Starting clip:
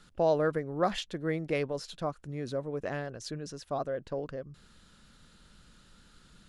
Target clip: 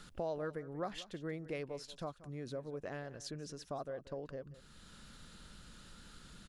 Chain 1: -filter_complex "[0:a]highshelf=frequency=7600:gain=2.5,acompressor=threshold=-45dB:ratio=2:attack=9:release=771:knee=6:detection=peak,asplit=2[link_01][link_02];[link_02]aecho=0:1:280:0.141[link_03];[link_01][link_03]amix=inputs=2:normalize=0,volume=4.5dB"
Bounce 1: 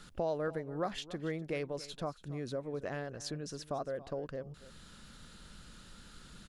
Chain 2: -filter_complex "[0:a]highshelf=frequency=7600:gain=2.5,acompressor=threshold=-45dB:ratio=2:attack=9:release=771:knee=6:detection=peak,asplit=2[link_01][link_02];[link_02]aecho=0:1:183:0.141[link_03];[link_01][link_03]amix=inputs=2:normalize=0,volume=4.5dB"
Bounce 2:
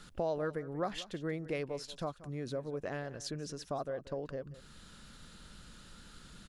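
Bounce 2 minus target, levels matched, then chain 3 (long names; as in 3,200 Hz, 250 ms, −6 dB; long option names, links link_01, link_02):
downward compressor: peak gain reduction −4.5 dB
-filter_complex "[0:a]highshelf=frequency=7600:gain=2.5,acompressor=threshold=-54dB:ratio=2:attack=9:release=771:knee=6:detection=peak,asplit=2[link_01][link_02];[link_02]aecho=0:1:183:0.141[link_03];[link_01][link_03]amix=inputs=2:normalize=0,volume=4.5dB"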